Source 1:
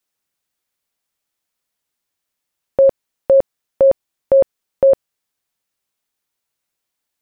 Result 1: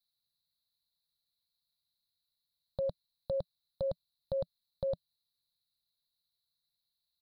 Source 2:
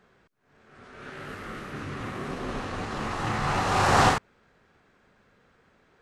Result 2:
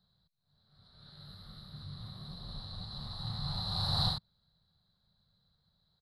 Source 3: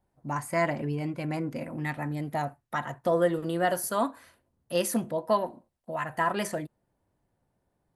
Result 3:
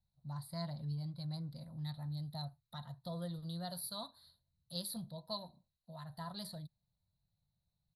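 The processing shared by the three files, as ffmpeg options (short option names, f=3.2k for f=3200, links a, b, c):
-af "firequalizer=gain_entry='entry(170,0);entry(260,-21);entry(420,-23);entry(600,-14);entry(960,-14);entry(2600,-28);entry(4000,15);entry(6200,-26);entry(10000,-4)':delay=0.05:min_phase=1,volume=-6dB"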